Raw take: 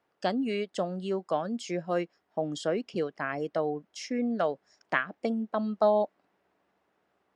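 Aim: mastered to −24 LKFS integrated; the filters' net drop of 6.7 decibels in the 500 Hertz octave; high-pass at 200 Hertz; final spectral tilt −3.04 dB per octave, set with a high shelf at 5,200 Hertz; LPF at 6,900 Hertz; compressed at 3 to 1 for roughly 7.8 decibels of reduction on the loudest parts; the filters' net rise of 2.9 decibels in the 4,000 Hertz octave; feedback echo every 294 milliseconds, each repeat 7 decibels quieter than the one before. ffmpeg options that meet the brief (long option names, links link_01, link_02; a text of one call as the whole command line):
ffmpeg -i in.wav -af "highpass=200,lowpass=6900,equalizer=frequency=500:width_type=o:gain=-9,equalizer=frequency=4000:width_type=o:gain=7.5,highshelf=frequency=5200:gain=-6.5,acompressor=threshold=-34dB:ratio=3,aecho=1:1:294|588|882|1176|1470:0.447|0.201|0.0905|0.0407|0.0183,volume=14dB" out.wav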